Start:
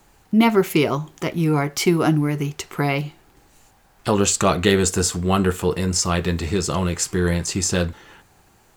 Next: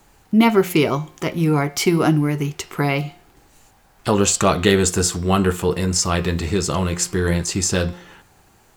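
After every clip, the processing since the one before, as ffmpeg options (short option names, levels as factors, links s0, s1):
-af "bandreject=f=177.2:t=h:w=4,bandreject=f=354.4:t=h:w=4,bandreject=f=531.6:t=h:w=4,bandreject=f=708.8:t=h:w=4,bandreject=f=886:t=h:w=4,bandreject=f=1063.2:t=h:w=4,bandreject=f=1240.4:t=h:w=4,bandreject=f=1417.6:t=h:w=4,bandreject=f=1594.8:t=h:w=4,bandreject=f=1772:t=h:w=4,bandreject=f=1949.2:t=h:w=4,bandreject=f=2126.4:t=h:w=4,bandreject=f=2303.6:t=h:w=4,bandreject=f=2480.8:t=h:w=4,bandreject=f=2658:t=h:w=4,bandreject=f=2835.2:t=h:w=4,bandreject=f=3012.4:t=h:w=4,bandreject=f=3189.6:t=h:w=4,bandreject=f=3366.8:t=h:w=4,bandreject=f=3544:t=h:w=4,bandreject=f=3721.2:t=h:w=4,bandreject=f=3898.4:t=h:w=4,bandreject=f=4075.6:t=h:w=4,bandreject=f=4252.8:t=h:w=4,bandreject=f=4430:t=h:w=4,bandreject=f=4607.2:t=h:w=4,bandreject=f=4784.4:t=h:w=4,bandreject=f=4961.6:t=h:w=4,bandreject=f=5138.8:t=h:w=4,bandreject=f=5316:t=h:w=4,bandreject=f=5493.2:t=h:w=4,bandreject=f=5670.4:t=h:w=4,volume=1.19"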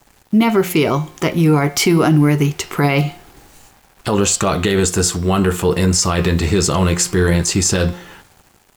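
-af "dynaudnorm=f=140:g=11:m=3.76,alimiter=limit=0.376:level=0:latency=1:release=31,acrusher=bits=7:mix=0:aa=0.5,volume=1.41"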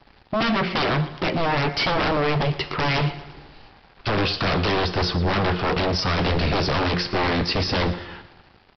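-af "aresample=11025,aeval=exprs='0.15*(abs(mod(val(0)/0.15+3,4)-2)-1)':c=same,aresample=44100,aecho=1:1:116|232|348|464:0.158|0.0777|0.0381|0.0186"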